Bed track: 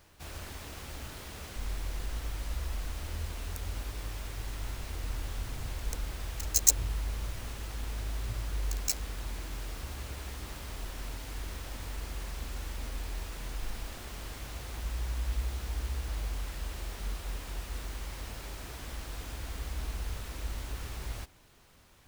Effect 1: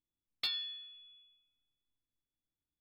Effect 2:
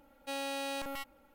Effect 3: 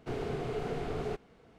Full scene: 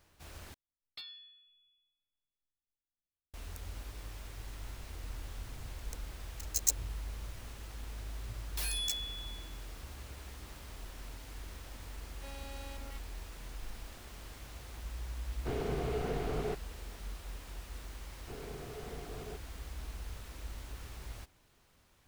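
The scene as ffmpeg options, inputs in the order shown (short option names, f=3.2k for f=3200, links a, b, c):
-filter_complex "[1:a]asplit=2[a][b];[3:a]asplit=2[c][d];[0:a]volume=-7dB[e];[a]lowshelf=f=89:g=7.5[f];[b]aeval=exprs='0.0422*sin(PI/2*5.62*val(0)/0.0422)':c=same[g];[e]asplit=2[h][i];[h]atrim=end=0.544[j];[f]atrim=end=2.8,asetpts=PTS-STARTPTS,volume=-11.5dB[k];[i]atrim=start=3.336[l];[g]atrim=end=2.8,asetpts=PTS-STARTPTS,volume=-7dB,afade=t=in:d=0.004:c=hsin,afade=t=out:st=2.796:d=0.004:c=hsin,adelay=8140[m];[2:a]atrim=end=1.34,asetpts=PTS-STARTPTS,volume=-13dB,afade=t=in:d=0.004:c=hsin,afade=t=out:st=1.336:d=0.004:c=hsin,adelay=11950[n];[c]atrim=end=1.58,asetpts=PTS-STARTPTS,volume=-0.5dB,afade=t=in:d=0.004:c=hsin,afade=t=out:st=1.576:d=0.004:c=hsin,adelay=15390[o];[d]atrim=end=1.58,asetpts=PTS-STARTPTS,volume=-11dB,afade=t=in:d=0.004:c=hsin,afade=t=out:st=1.576:d=0.004:c=hsin,adelay=18210[p];[j][k]acrossfade=d=0.004:c1=hsin:c2=hsin[q];[q][l]acrossfade=d=0.004:c1=hsin:c2=hsin[r];[r][m][n][o][p]amix=inputs=5:normalize=0"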